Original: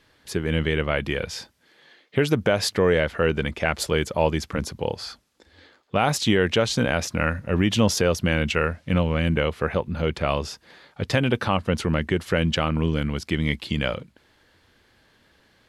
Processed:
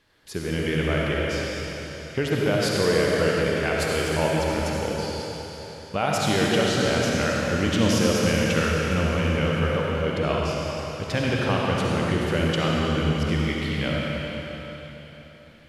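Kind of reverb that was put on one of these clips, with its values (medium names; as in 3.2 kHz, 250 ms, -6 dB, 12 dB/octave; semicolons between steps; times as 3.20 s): algorithmic reverb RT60 3.9 s, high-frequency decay 1×, pre-delay 25 ms, DRR -4 dB; trim -5 dB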